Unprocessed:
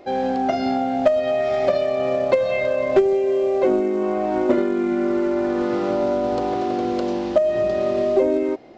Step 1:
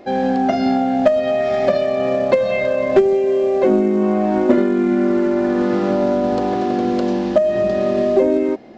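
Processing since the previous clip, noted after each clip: small resonant body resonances 210/1700 Hz, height 10 dB, ringing for 60 ms; trim +2.5 dB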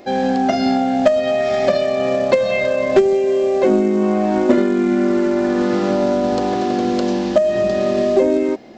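treble shelf 3.9 kHz +10.5 dB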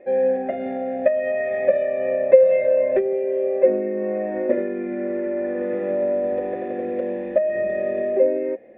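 cascade formant filter e; trim +4.5 dB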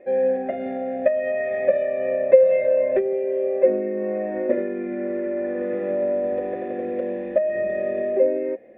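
band-stop 860 Hz, Q 12; trim -1 dB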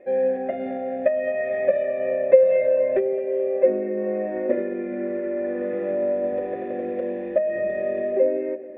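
tape echo 215 ms, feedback 64%, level -15 dB, low-pass 1.6 kHz; trim -1 dB

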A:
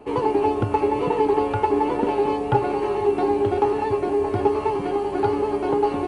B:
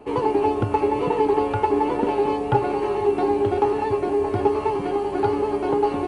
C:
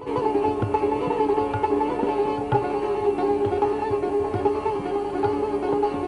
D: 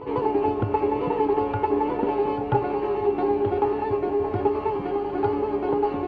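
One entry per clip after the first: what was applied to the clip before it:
no audible change
pre-echo 144 ms -14 dB; trim -2 dB
distance through air 220 m

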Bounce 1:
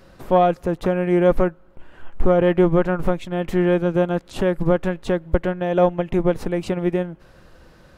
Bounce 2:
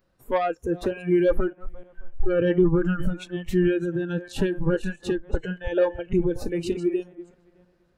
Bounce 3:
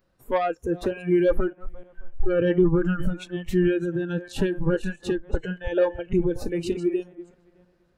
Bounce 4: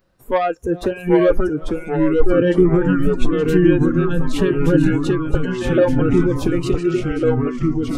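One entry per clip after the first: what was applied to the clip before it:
backward echo that repeats 306 ms, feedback 42%, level -9.5 dB; saturation -11 dBFS, distortion -15 dB; spectral noise reduction 21 dB
no audible change
ever faster or slower copies 744 ms, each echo -2 st, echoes 3; trim +5.5 dB

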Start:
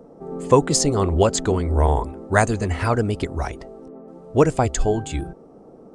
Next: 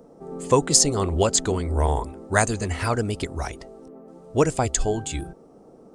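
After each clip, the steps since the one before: treble shelf 3.2 kHz +10 dB; trim -4 dB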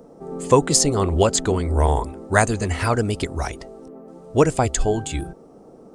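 dynamic bell 6.3 kHz, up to -5 dB, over -36 dBFS, Q 0.76; trim +3.5 dB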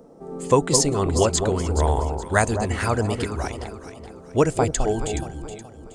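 echo whose repeats swap between lows and highs 211 ms, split 1 kHz, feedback 60%, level -6.5 dB; trim -2.5 dB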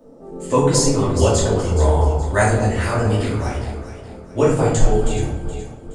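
simulated room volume 160 m³, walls mixed, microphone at 2.6 m; trim -7 dB

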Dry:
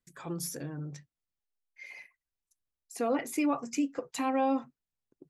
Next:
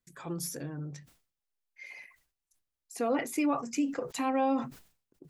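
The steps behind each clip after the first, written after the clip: decay stretcher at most 120 dB/s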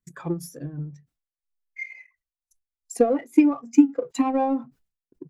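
power-law waveshaper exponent 0.7; transient shaper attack +11 dB, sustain -9 dB; spectral contrast expander 1.5:1; trim +5.5 dB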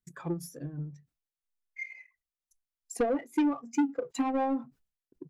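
saturation -16.5 dBFS, distortion -8 dB; trim -4.5 dB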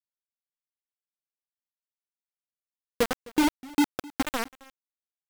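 bit crusher 4-bit; delay 258 ms -22 dB; warped record 78 rpm, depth 250 cents

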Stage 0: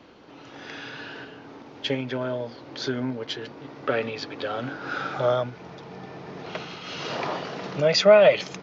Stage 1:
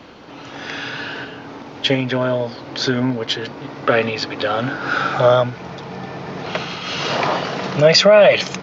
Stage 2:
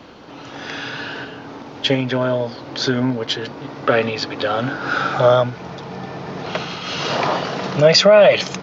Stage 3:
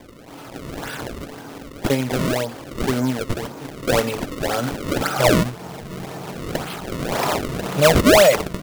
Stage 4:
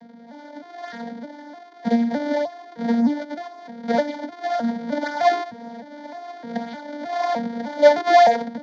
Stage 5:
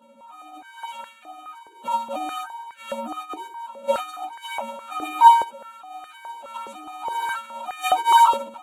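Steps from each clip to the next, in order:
peaking EQ 370 Hz -3.5 dB 0.93 oct; loudness maximiser +12 dB; trim -1 dB
peaking EQ 2.2 kHz -2.5 dB
decimation with a swept rate 31×, swing 160% 1.9 Hz; trim -2 dB
vocoder on a broken chord major triad, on A#3, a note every 306 ms; static phaser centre 1.8 kHz, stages 8; trim +4.5 dB
frequency axis rescaled in octaves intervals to 128%; step-sequenced high-pass 4.8 Hz 420–1800 Hz; trim -2.5 dB

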